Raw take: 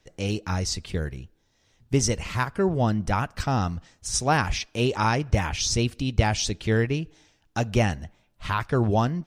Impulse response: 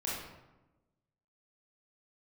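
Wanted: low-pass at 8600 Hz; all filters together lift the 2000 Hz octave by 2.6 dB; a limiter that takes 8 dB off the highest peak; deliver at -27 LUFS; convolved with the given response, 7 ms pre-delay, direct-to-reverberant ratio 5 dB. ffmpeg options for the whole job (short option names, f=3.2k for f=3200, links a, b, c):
-filter_complex "[0:a]lowpass=8.6k,equalizer=f=2k:t=o:g=3.5,alimiter=limit=-14dB:level=0:latency=1,asplit=2[a][b];[1:a]atrim=start_sample=2205,adelay=7[c];[b][c]afir=irnorm=-1:irlink=0,volume=-9dB[d];[a][d]amix=inputs=2:normalize=0,volume=-1.5dB"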